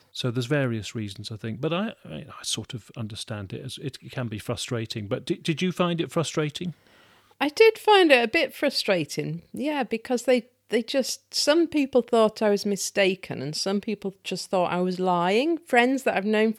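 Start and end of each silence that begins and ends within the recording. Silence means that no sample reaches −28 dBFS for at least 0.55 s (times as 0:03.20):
0:06.70–0:07.41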